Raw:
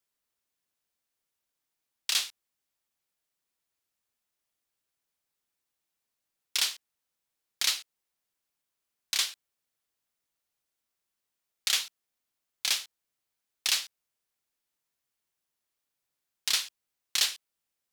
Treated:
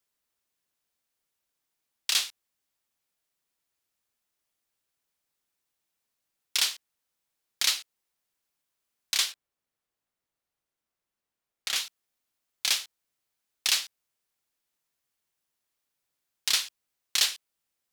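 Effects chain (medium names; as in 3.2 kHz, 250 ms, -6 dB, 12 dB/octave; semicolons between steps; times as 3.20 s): 9.32–11.76 s: treble shelf 2.4 kHz -8.5 dB; trim +2 dB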